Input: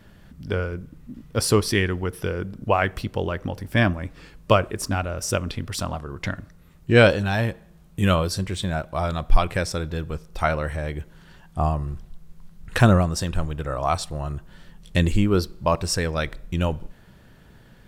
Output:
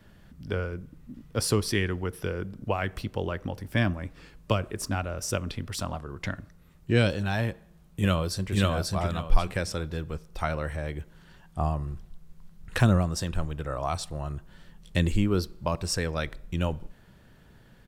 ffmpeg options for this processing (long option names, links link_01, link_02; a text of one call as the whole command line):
ffmpeg -i in.wav -filter_complex "[0:a]asplit=2[link_01][link_02];[link_02]afade=type=in:start_time=7.49:duration=0.01,afade=type=out:start_time=8.53:duration=0.01,aecho=0:1:540|1080|1620:1|0.2|0.04[link_03];[link_01][link_03]amix=inputs=2:normalize=0,acrossover=split=300|3000[link_04][link_05][link_06];[link_05]acompressor=threshold=-21dB:ratio=6[link_07];[link_04][link_07][link_06]amix=inputs=3:normalize=0,volume=-4.5dB" out.wav